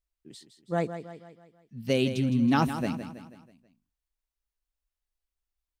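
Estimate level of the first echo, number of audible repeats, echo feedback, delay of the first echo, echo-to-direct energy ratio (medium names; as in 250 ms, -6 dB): -10.5 dB, 4, 49%, 162 ms, -9.5 dB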